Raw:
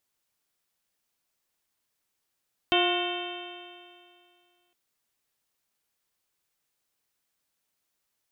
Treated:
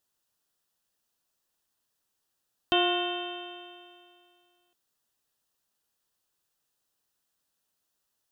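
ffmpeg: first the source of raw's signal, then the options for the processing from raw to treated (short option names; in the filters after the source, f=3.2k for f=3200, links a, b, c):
-f lavfi -i "aevalsrc='0.0631*pow(10,-3*t/2.27)*sin(2*PI*351.63*t)+0.0562*pow(10,-3*t/2.27)*sin(2*PI*707.04*t)+0.0266*pow(10,-3*t/2.27)*sin(2*PI*1069.92*t)+0.0251*pow(10,-3*t/2.27)*sin(2*PI*1443.87*t)+0.0141*pow(10,-3*t/2.27)*sin(2*PI*1832.27*t)+0.0211*pow(10,-3*t/2.27)*sin(2*PI*2238.31*t)+0.0422*pow(10,-3*t/2.27)*sin(2*PI*2664.91*t)+0.0631*pow(10,-3*t/2.27)*sin(2*PI*3114.73*t)+0.02*pow(10,-3*t/2.27)*sin(2*PI*3590.16*t)':d=2.01:s=44100"
-af "equalizer=f=2.2k:w=7.4:g=-14"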